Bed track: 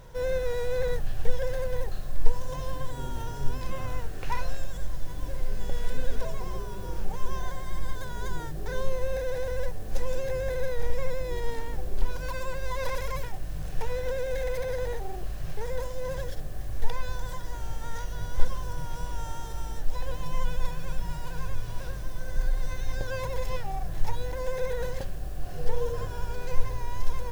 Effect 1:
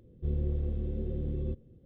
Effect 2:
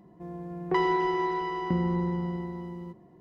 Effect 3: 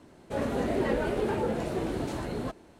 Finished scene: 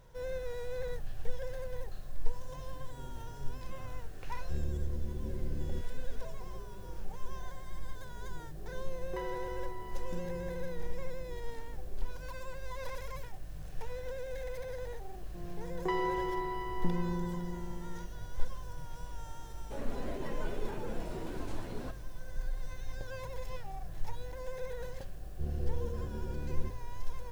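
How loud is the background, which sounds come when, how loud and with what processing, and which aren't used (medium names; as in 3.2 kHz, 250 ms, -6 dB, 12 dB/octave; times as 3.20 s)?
bed track -10 dB
4.27 s: add 1 -5.5 dB
8.42 s: add 2 -16 dB
15.14 s: add 2 -7.5 dB
19.40 s: add 3 -9.5 dB + peak limiter -23 dBFS
25.16 s: add 1 -6 dB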